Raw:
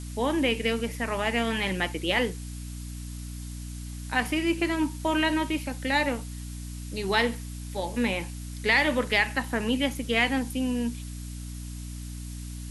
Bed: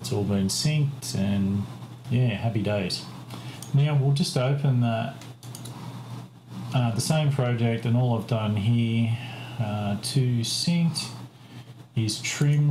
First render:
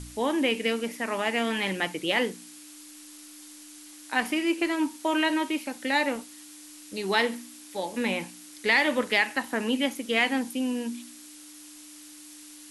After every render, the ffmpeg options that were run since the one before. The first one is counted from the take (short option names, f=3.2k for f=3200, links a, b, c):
-af "bandreject=f=60:t=h:w=4,bandreject=f=120:t=h:w=4,bandreject=f=180:t=h:w=4,bandreject=f=240:t=h:w=4"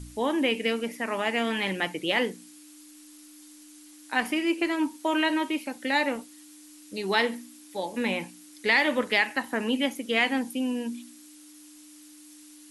-af "afftdn=nr=6:nf=-47"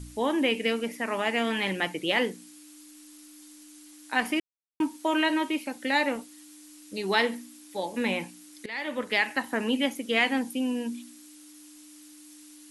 -filter_complex "[0:a]asplit=4[a][b][c][d];[a]atrim=end=4.4,asetpts=PTS-STARTPTS,afade=t=out:st=4.396:d=0.004:c=hsin[e];[b]atrim=start=4.4:end=4.8,asetpts=PTS-STARTPTS,volume=0[f];[c]atrim=start=4.8:end=8.66,asetpts=PTS-STARTPTS,afade=t=in:d=0.004:c=hsin,afade=t=out:st=3.856:d=0.004:c=hsin:silence=0.0891251[g];[d]atrim=start=8.66,asetpts=PTS-STARTPTS,afade=t=in:d=0.65:silence=0.0891251[h];[e][f][g][h]concat=n=4:v=0:a=1"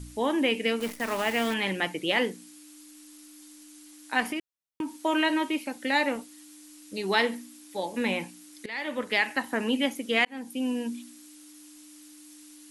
-filter_complex "[0:a]asettb=1/sr,asplit=3[a][b][c];[a]atrim=end=0.804[d];[b]atrim=start=0.8:end=1.54,asetpts=PTS-STARTPTS,afade=t=in:d=0.004:c=qsin,afade=t=out:st=0.736:d=0.004:c=qsin,acrusher=bits=7:dc=4:mix=0:aa=0.000001[e];[c]atrim=start=1.536[f];[d][e]acrossfade=d=0.004:c1=hsin:c2=qsin[g];[g][f]acrossfade=d=0.004:c1=qsin:c2=hsin,asettb=1/sr,asplit=3[h][i][j];[h]atrim=end=4.234[k];[i]atrim=start=4.23:end=5.02,asetpts=PTS-STARTPTS,afade=t=in:d=0.004:c=qsin,afade=t=out:st=0.786:d=0.004:c=qsin,acompressor=threshold=-27dB:ratio=6:attack=3.2:release=140:knee=1:detection=peak[l];[j]atrim=start=5.016[m];[k][l]acrossfade=d=0.004:c1=hsin:c2=qsin[n];[n][m]acrossfade=d=0.004:c1=qsin:c2=hsin,asplit=2[o][p];[o]atrim=end=10.25,asetpts=PTS-STARTPTS,afade=t=out:st=10.246:d=0.004:c=hsin[q];[p]atrim=start=10.25,asetpts=PTS-STARTPTS,afade=t=in:d=0.42[r];[q][r]concat=n=2:v=0:a=1"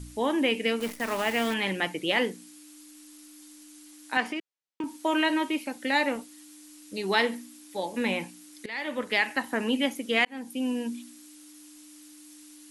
-filter_complex "[0:a]asettb=1/sr,asplit=3[a][b][c];[a]atrim=end=4.174[d];[b]atrim=start=4.17:end=4.84,asetpts=PTS-STARTPTS,afade=t=in:d=0.004:c=qsin,afade=t=out:st=0.666:d=0.004:c=qsin,highpass=230,lowpass=6.5k[e];[c]atrim=start=4.836[f];[d][e]acrossfade=d=0.004:c1=hsin:c2=qsin[g];[g][f]acrossfade=d=0.004:c1=qsin:c2=hsin"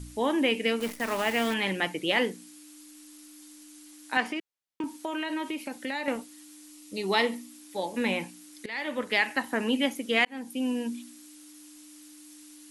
-filter_complex "[0:a]asettb=1/sr,asplit=3[a][b][c];[a]atrim=end=4.974[d];[b]atrim=start=4.97:end=6.08,asetpts=PTS-STARTPTS,afade=t=in:d=0.004:c=qsin,afade=t=out:st=1.106:d=0.004:c=qsin,acompressor=threshold=-29dB:ratio=4:attack=3.2:release=140:knee=1:detection=peak[e];[c]atrim=start=6.076[f];[d][e]acrossfade=d=0.004:c1=hsin:c2=qsin[g];[g][f]acrossfade=d=0.004:c1=qsin:c2=hsin,asettb=1/sr,asplit=3[h][i][j];[h]atrim=end=6.714[k];[i]atrim=start=6.71:end=7.5,asetpts=PTS-STARTPTS,afade=t=in:d=0.004:c=qsin,afade=t=out:st=0.786:d=0.004:c=qsin,bandreject=f=1.6k:w=5[l];[j]atrim=start=7.496[m];[k][l]acrossfade=d=0.004:c1=hsin:c2=qsin[n];[n][m]acrossfade=d=0.004:c1=qsin:c2=hsin"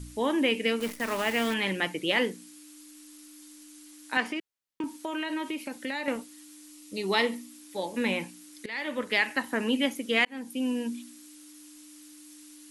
-af "equalizer=f=760:t=o:w=0.38:g=-4"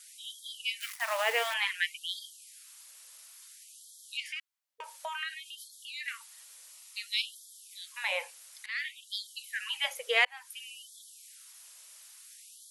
-af "afftfilt=real='re*gte(b*sr/1024,430*pow(3200/430,0.5+0.5*sin(2*PI*0.57*pts/sr)))':imag='im*gte(b*sr/1024,430*pow(3200/430,0.5+0.5*sin(2*PI*0.57*pts/sr)))':win_size=1024:overlap=0.75"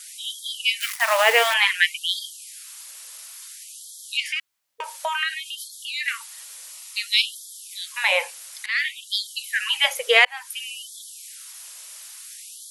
-af "volume=12dB,alimiter=limit=-2dB:level=0:latency=1"